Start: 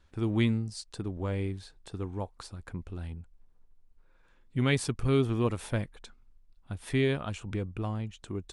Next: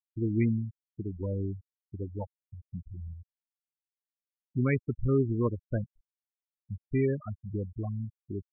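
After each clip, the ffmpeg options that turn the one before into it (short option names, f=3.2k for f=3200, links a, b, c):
-filter_complex "[0:a]acrossover=split=2800[a][b];[b]acompressor=threshold=-47dB:ratio=4:attack=1:release=60[c];[a][c]amix=inputs=2:normalize=0,afftfilt=real='re*gte(hypot(re,im),0.0708)':imag='im*gte(hypot(re,im),0.0708)':win_size=1024:overlap=0.75"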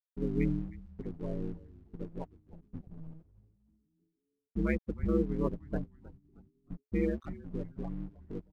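-filter_complex "[0:a]aeval=exprs='val(0)*sin(2*PI*77*n/s)':c=same,aeval=exprs='sgn(val(0))*max(abs(val(0))-0.00211,0)':c=same,asplit=5[a][b][c][d][e];[b]adelay=312,afreqshift=-110,volume=-18dB[f];[c]adelay=624,afreqshift=-220,volume=-25.3dB[g];[d]adelay=936,afreqshift=-330,volume=-32.7dB[h];[e]adelay=1248,afreqshift=-440,volume=-40dB[i];[a][f][g][h][i]amix=inputs=5:normalize=0"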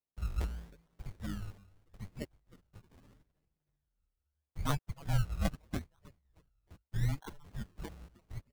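-af "highpass=f=360:t=q:w=0.5412,highpass=f=360:t=q:w=1.307,lowpass=f=2.3k:t=q:w=0.5176,lowpass=f=2.3k:t=q:w=0.7071,lowpass=f=2.3k:t=q:w=1.932,afreqshift=-360,acrusher=samples=26:mix=1:aa=0.000001:lfo=1:lforange=15.6:lforate=0.79,volume=4dB"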